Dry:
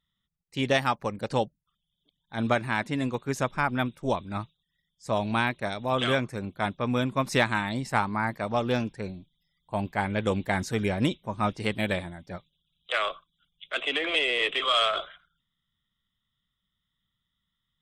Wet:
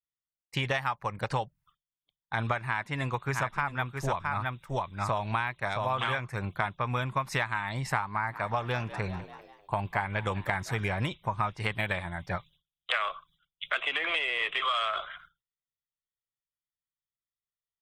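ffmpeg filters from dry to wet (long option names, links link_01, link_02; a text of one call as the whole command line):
ffmpeg -i in.wav -filter_complex "[0:a]asettb=1/sr,asplit=3[link_01][link_02][link_03];[link_01]atrim=end=2.664[link_04];[link_02]atrim=start=2.66:end=6.22,asetpts=PTS-STARTPTS,afade=type=in:duration=0.004:curve=qsin,afade=type=out:start_time=3.556:duration=0.004:curve=qsin,aecho=1:1:667:0.447,atrim=end_sample=156996[link_05];[link_03]atrim=start=6.216[link_06];[link_04][link_05]acrossfade=duration=0.004:curve1=hsin:curve2=qsin[link_07];[link_07][link_06]acrossfade=duration=0.004:curve1=qsin:curve2=hsin,asplit=3[link_08][link_09][link_10];[link_08]afade=type=out:start_time=8.14:duration=0.02[link_11];[link_09]asplit=5[link_12][link_13][link_14][link_15][link_16];[link_13]adelay=196,afreqshift=71,volume=-20dB[link_17];[link_14]adelay=392,afreqshift=142,volume=-26.2dB[link_18];[link_15]adelay=588,afreqshift=213,volume=-32.4dB[link_19];[link_16]adelay=784,afreqshift=284,volume=-38.6dB[link_20];[link_12][link_17][link_18][link_19][link_20]amix=inputs=5:normalize=0,afade=type=in:start_time=8.14:duration=0.02,afade=type=out:start_time=10.91:duration=0.02[link_21];[link_10]afade=type=in:start_time=10.91:duration=0.02[link_22];[link_11][link_21][link_22]amix=inputs=3:normalize=0,agate=range=-33dB:threshold=-57dB:ratio=3:detection=peak,equalizer=frequency=125:width_type=o:width=1:gain=4,equalizer=frequency=250:width_type=o:width=1:gain=-12,equalizer=frequency=500:width_type=o:width=1:gain=-4,equalizer=frequency=1000:width_type=o:width=1:gain=6,equalizer=frequency=2000:width_type=o:width=1:gain=4,equalizer=frequency=4000:width_type=o:width=1:gain=-3,equalizer=frequency=8000:width_type=o:width=1:gain=-4,acompressor=threshold=-36dB:ratio=6,volume=8.5dB" out.wav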